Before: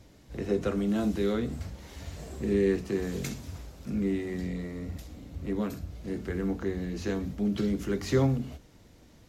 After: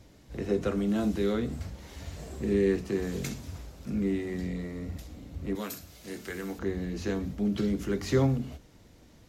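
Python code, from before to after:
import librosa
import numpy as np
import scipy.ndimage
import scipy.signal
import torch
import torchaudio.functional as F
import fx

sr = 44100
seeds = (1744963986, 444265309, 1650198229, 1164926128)

y = fx.tilt_eq(x, sr, slope=3.5, at=(5.55, 6.59))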